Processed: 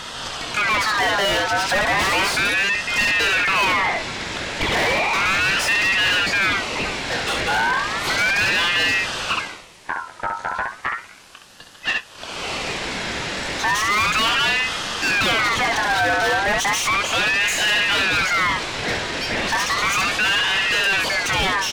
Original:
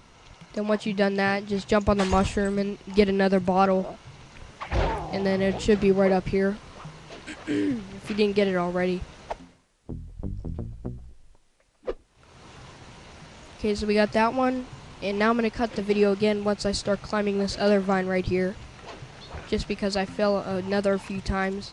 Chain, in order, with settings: high-pass 140 Hz 24 dB/octave; band-stop 1.9 kHz, Q 26; early reflections 22 ms -11.5 dB, 67 ms -7.5 dB; overdrive pedal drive 37 dB, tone 4.3 kHz, clips at -7 dBFS; ring modulator with a swept carrier 1.7 kHz, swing 35%, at 0.34 Hz; trim -2.5 dB

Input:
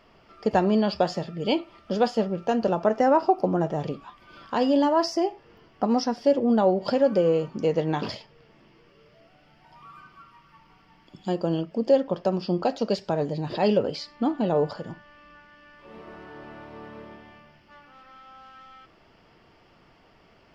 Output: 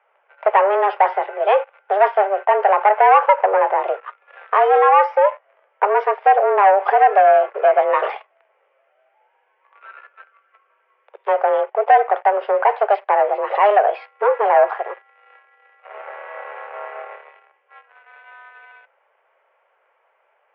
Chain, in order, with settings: waveshaping leveller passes 3; mistuned SSB +200 Hz 290–2300 Hz; trim +2 dB

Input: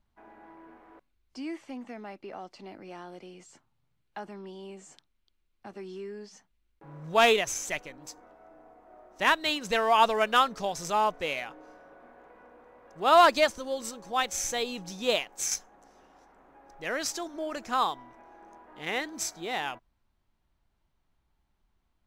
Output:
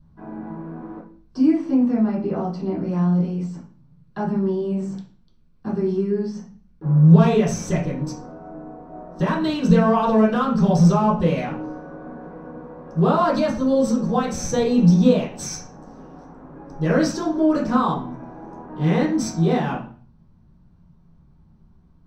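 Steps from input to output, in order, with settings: in parallel at -1 dB: compression, threshold -33 dBFS, peak gain reduction 17.5 dB; on the sum: peak limiter -18.5 dBFS, peak gain reduction 10 dB; tone controls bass +13 dB, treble -5 dB; reverberation RT60 0.45 s, pre-delay 3 ms, DRR -9 dB; trim -8.5 dB

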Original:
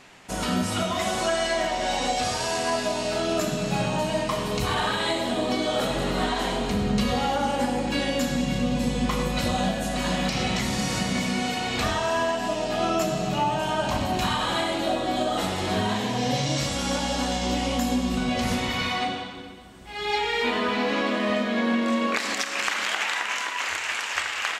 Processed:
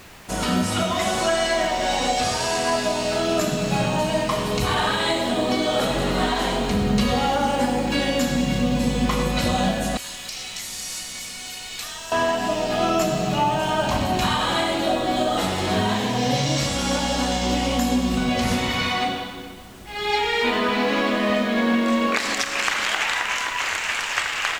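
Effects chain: 9.97–12.12 s: pre-emphasis filter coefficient 0.97; added noise pink -51 dBFS; trim +3.5 dB

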